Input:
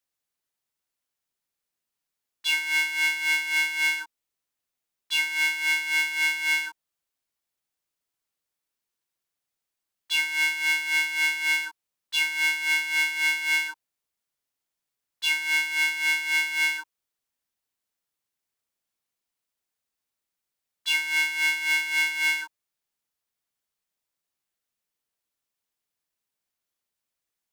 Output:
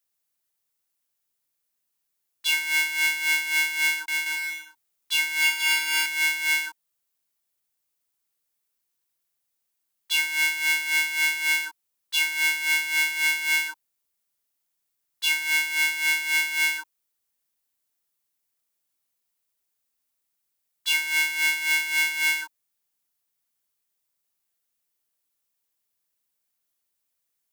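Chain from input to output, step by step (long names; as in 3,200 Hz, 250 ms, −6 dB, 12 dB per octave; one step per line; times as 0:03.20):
high-shelf EQ 7,900 Hz +10 dB
0:03.78–0:06.06: bouncing-ball delay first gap 300 ms, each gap 0.6×, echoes 5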